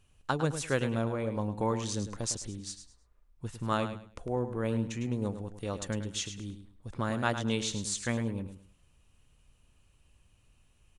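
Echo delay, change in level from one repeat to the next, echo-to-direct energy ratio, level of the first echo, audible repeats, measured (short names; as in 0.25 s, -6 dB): 0.105 s, -12.0 dB, -9.5 dB, -10.0 dB, 3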